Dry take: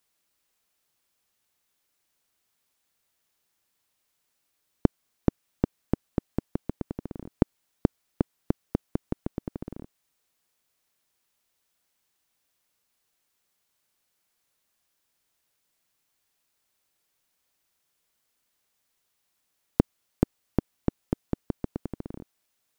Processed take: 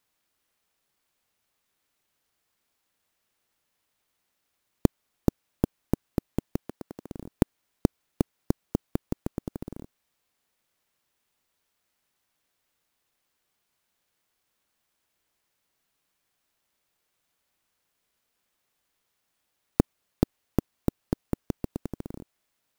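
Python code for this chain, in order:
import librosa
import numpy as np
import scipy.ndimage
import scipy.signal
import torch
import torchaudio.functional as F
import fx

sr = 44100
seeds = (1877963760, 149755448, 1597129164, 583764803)

y = fx.highpass(x, sr, hz=540.0, slope=6, at=(6.6, 7.09))
y = fx.clock_jitter(y, sr, seeds[0], jitter_ms=0.043)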